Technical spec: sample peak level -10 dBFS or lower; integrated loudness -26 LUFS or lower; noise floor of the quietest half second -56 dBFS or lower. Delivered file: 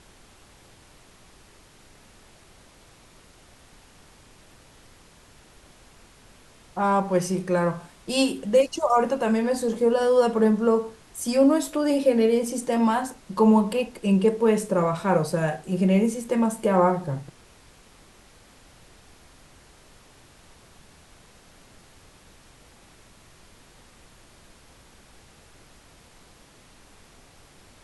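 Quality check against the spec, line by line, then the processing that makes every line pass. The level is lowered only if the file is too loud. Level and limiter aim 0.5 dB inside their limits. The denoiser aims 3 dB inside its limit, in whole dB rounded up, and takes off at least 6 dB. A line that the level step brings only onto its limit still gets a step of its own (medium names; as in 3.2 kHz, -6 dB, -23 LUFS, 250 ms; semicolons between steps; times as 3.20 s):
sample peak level -7.5 dBFS: fail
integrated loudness -22.5 LUFS: fail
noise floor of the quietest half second -53 dBFS: fail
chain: trim -4 dB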